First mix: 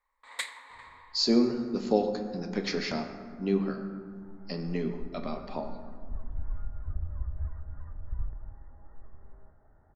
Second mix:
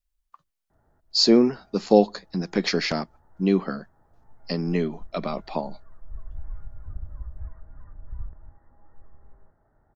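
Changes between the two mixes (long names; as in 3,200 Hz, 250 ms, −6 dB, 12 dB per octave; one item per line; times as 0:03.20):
speech +11.0 dB
first sound: muted
reverb: off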